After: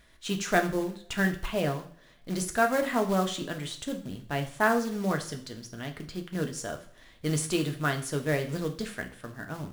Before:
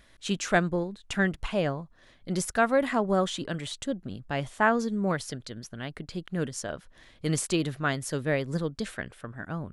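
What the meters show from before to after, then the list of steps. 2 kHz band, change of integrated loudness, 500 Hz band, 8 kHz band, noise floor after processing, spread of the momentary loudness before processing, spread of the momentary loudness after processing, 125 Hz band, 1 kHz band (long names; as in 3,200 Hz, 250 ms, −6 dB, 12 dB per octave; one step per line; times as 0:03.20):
−0.5 dB, −1.0 dB, −1.0 dB, 0.0 dB, −57 dBFS, 14 LU, 14 LU, −0.5 dB, −0.5 dB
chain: floating-point word with a short mantissa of 2 bits
coupled-rooms reverb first 0.49 s, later 1.7 s, from −27 dB, DRR 4.5 dB
level −2 dB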